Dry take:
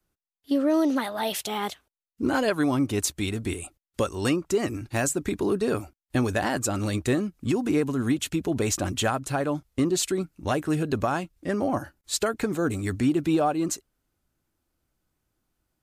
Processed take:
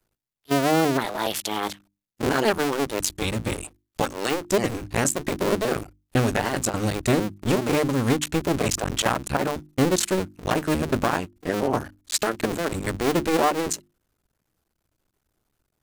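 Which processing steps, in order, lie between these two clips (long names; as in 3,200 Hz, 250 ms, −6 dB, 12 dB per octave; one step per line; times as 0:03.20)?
sub-harmonics by changed cycles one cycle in 2, muted
mains-hum notches 50/100/150/200/250/300/350 Hz
level +5 dB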